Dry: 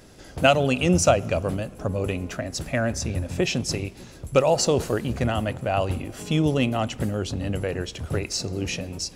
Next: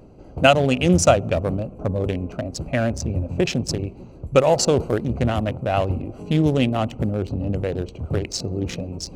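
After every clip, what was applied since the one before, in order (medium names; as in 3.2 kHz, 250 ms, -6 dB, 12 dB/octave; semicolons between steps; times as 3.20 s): local Wiener filter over 25 samples; reverse; upward compressor, threshold -36 dBFS; reverse; trim +3.5 dB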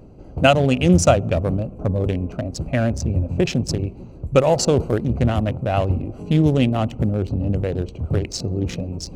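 bass shelf 270 Hz +5.5 dB; trim -1 dB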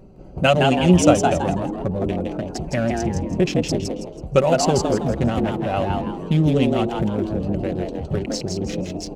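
comb 5.3 ms, depth 46%; on a send: frequency-shifting echo 163 ms, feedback 34%, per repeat +120 Hz, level -4 dB; on the sum: trim -2.5 dB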